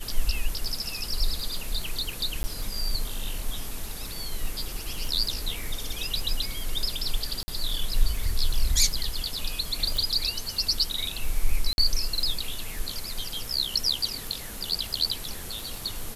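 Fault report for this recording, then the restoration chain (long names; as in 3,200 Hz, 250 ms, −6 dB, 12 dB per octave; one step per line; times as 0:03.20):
surface crackle 31 per second −31 dBFS
0:02.43–0:02.44: drop-out 10 ms
0:07.43–0:07.48: drop-out 50 ms
0:09.97: click
0:11.73–0:11.78: drop-out 51 ms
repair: click removal
repair the gap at 0:02.43, 10 ms
repair the gap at 0:07.43, 50 ms
repair the gap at 0:11.73, 51 ms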